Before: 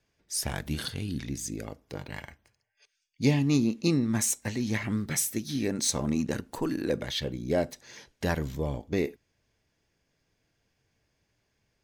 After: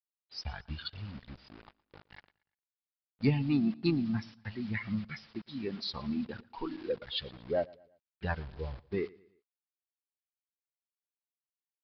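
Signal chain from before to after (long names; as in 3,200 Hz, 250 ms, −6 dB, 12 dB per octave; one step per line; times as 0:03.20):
spectral dynamics exaggerated over time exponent 2
in parallel at −10 dB: hard clipping −29 dBFS, distortion −8 dB
on the sum: bit reduction 8 bits
on a send: repeating echo 116 ms, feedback 42%, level −23 dB
on the sum: downsampling to 11,025 Hz
pitch-shifted copies added −3 semitones −16 dB
level −2.5 dB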